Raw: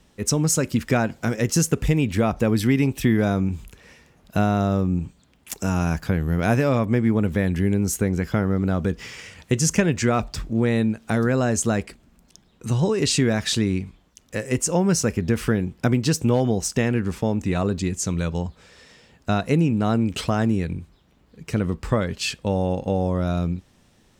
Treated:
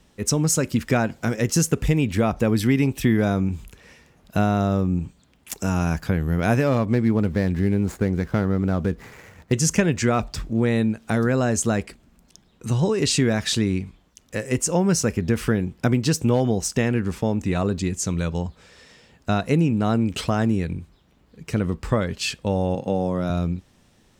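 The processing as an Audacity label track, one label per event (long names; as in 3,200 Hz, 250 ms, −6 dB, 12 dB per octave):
6.670000	9.530000	running median over 15 samples
22.750000	23.300000	high-pass filter 110 Hz 24 dB per octave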